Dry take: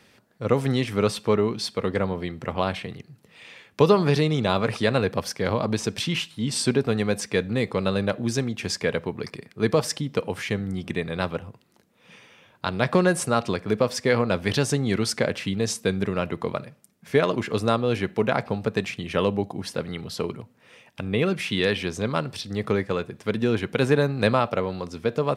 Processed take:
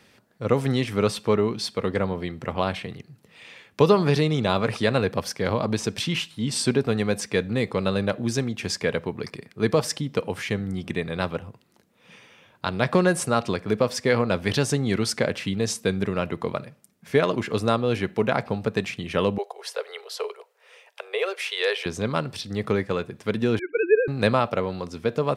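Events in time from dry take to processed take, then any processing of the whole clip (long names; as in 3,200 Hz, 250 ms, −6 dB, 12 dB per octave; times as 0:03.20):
0:19.38–0:21.86: Butterworth high-pass 400 Hz 96 dB per octave
0:23.59–0:24.08: three sine waves on the formant tracks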